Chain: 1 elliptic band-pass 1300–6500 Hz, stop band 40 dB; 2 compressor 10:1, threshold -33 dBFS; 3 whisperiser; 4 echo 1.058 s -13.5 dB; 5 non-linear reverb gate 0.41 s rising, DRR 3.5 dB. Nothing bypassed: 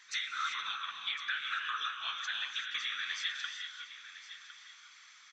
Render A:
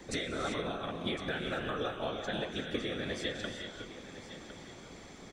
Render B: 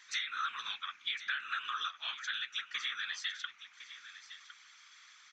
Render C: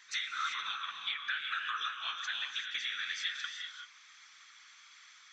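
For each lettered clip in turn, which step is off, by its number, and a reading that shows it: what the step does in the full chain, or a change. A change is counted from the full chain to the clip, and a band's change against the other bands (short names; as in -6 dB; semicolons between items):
1, loudness change -1.0 LU; 5, momentary loudness spread change +2 LU; 4, momentary loudness spread change +4 LU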